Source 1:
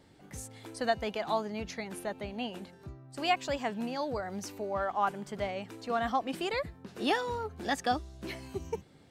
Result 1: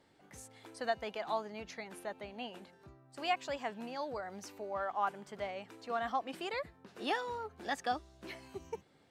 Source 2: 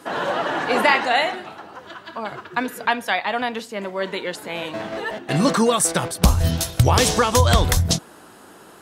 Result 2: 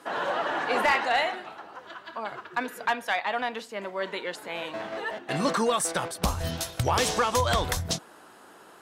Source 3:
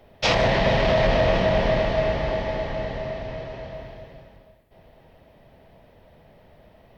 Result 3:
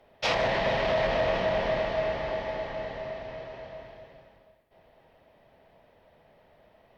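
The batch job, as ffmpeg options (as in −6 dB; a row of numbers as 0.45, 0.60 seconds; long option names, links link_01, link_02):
-filter_complex "[0:a]asplit=2[link_01][link_02];[link_02]highpass=frequency=720:poles=1,volume=11dB,asoftclip=type=tanh:threshold=-1.5dB[link_03];[link_01][link_03]amix=inputs=2:normalize=0,lowpass=frequency=1600:poles=1,volume=-6dB,aemphasis=mode=production:type=cd,volume=7.5dB,asoftclip=hard,volume=-7.5dB,volume=-8dB"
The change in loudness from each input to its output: −5.5, −7.5, −6.0 LU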